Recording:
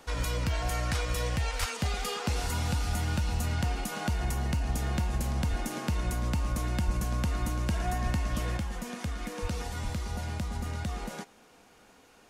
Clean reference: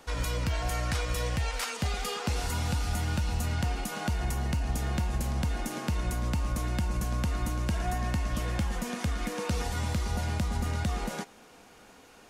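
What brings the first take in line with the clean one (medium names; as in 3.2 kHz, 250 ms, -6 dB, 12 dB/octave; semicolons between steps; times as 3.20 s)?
de-plosive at 1.59/5.49/6.85/8.04/9.41/9.83 s; gain correction +4 dB, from 8.57 s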